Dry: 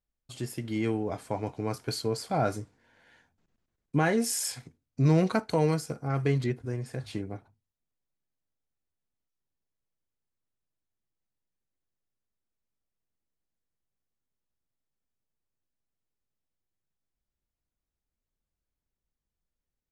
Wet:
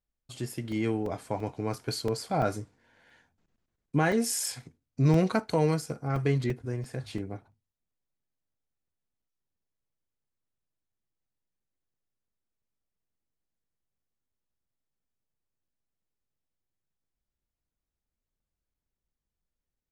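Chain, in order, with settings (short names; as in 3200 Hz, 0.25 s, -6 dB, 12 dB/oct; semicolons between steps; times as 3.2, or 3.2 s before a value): crackling interface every 0.34 s, samples 128, zero, from 0.72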